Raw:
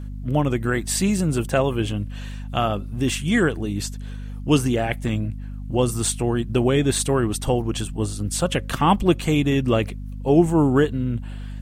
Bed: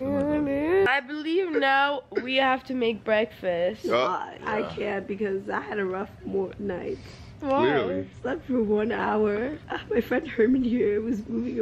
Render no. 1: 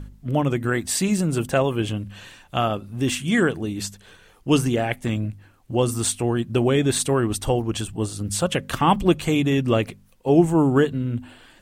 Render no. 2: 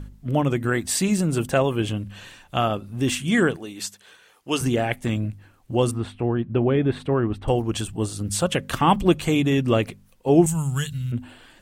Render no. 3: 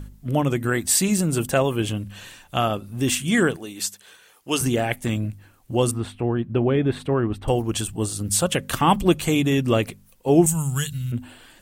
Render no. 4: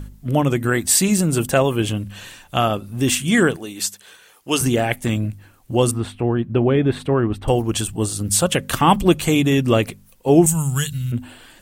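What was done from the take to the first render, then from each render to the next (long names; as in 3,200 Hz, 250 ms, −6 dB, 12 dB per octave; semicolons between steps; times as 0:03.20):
hum removal 50 Hz, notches 5
0:03.56–0:04.61: high-pass filter 710 Hz 6 dB per octave; 0:05.91–0:07.48: high-frequency loss of the air 490 metres; 0:10.46–0:11.12: drawn EQ curve 170 Hz 0 dB, 310 Hz −27 dB, 6,500 Hz +13 dB
high-shelf EQ 7,400 Hz +10.5 dB
level +3.5 dB; brickwall limiter −2 dBFS, peak gain reduction 1.5 dB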